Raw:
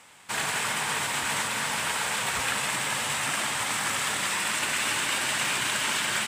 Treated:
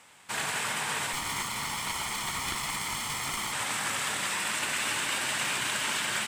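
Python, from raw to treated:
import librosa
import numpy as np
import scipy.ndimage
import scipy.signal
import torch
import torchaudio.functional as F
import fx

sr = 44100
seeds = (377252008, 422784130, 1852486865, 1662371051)

y = fx.lower_of_two(x, sr, delay_ms=0.94, at=(1.13, 3.53))
y = y * 10.0 ** (-3.0 / 20.0)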